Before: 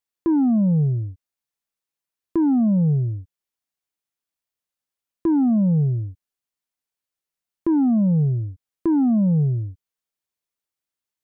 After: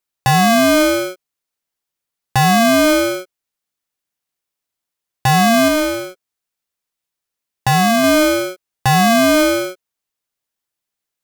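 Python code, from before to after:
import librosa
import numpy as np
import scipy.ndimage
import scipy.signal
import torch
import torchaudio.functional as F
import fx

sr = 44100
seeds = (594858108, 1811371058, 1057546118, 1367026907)

y = fx.peak_eq(x, sr, hz=110.0, db=-5.0, octaves=1.5, at=(5.68, 8.04))
y = y * np.sign(np.sin(2.0 * np.pi * 460.0 * np.arange(len(y)) / sr))
y = y * librosa.db_to_amplitude(5.5)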